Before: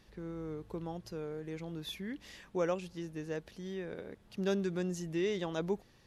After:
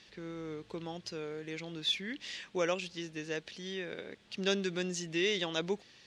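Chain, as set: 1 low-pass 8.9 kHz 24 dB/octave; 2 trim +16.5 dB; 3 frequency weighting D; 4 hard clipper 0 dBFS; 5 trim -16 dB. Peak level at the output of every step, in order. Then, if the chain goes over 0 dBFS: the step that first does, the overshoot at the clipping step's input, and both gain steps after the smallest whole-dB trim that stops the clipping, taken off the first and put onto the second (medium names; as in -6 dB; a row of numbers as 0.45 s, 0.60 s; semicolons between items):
-21.0 dBFS, -4.5 dBFS, -2.0 dBFS, -2.0 dBFS, -18.0 dBFS; nothing clips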